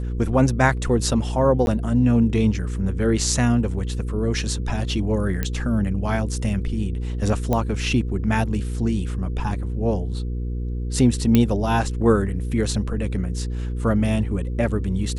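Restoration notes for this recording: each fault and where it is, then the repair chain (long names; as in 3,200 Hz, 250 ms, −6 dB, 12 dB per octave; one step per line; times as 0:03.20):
mains hum 60 Hz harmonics 8 −26 dBFS
0:01.66–0:01.67: drop-out 11 ms
0:05.43: click −10 dBFS
0:07.53: click −9 dBFS
0:11.35: click −4 dBFS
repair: click removal
hum removal 60 Hz, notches 8
repair the gap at 0:01.66, 11 ms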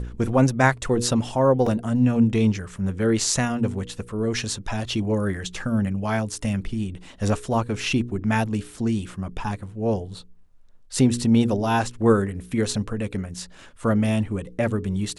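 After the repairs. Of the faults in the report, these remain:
none of them is left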